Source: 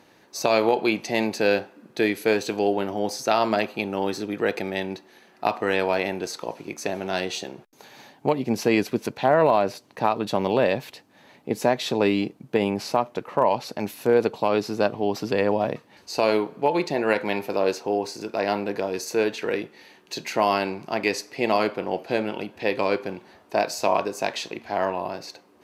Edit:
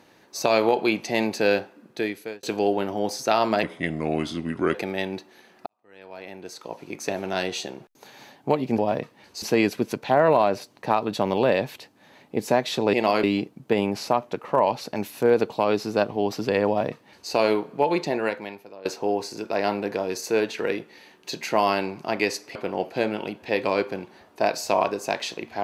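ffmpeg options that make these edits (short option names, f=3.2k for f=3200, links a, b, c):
-filter_complex "[0:a]asplit=11[a][b][c][d][e][f][g][h][i][j][k];[a]atrim=end=2.43,asetpts=PTS-STARTPTS,afade=t=out:st=1.43:d=1:c=qsin[l];[b]atrim=start=2.43:end=3.634,asetpts=PTS-STARTPTS,afade=t=in:d=0.004:c=hsin[m];[c]atrim=start=3.63:end=4.52,asetpts=PTS-STARTPTS,asetrate=35280,aresample=44100,atrim=end_sample=49061,asetpts=PTS-STARTPTS[n];[d]atrim=start=4.516:end=5.44,asetpts=PTS-STARTPTS,afade=t=out:st=0.92:d=0.004:c=hsin[o];[e]atrim=start=5.44:end=8.562,asetpts=PTS-STARTPTS,afade=t=in:d=1.33:c=qua[p];[f]atrim=start=15.508:end=16.152[q];[g]atrim=start=8.558:end=12.072[r];[h]atrim=start=21.388:end=21.692[s];[i]atrim=start=12.068:end=17.69,asetpts=PTS-STARTPTS,afade=t=out:st=4.862:d=0.76:c=qua:silence=0.0891251[t];[j]atrim=start=17.69:end=21.392,asetpts=PTS-STARTPTS,afade=t=in:d=0.004:c=hsin:silence=0.0891251[u];[k]atrim=start=21.688[v];[l][m]concat=n=2:v=0:a=1[w];[w][n]acrossfade=d=0.004:c1=hsin:c2=hsin[x];[o][p]concat=n=2:v=0:a=1[y];[x][y]acrossfade=d=0.004:c1=hsin:c2=hsin[z];[z][q]acrossfade=d=0.004:c1=hsin:c2=hsin[aa];[aa][r]acrossfade=d=0.004:c1=hsin:c2=hsin[ab];[ab][s]acrossfade=d=0.004:c1=hsin:c2=hsin[ac];[t][u]concat=n=2:v=0:a=1[ad];[ac][ad]acrossfade=d=0.004:c1=hsin:c2=hsin[ae];[ae][v]acrossfade=d=0.004:c1=hsin:c2=hsin"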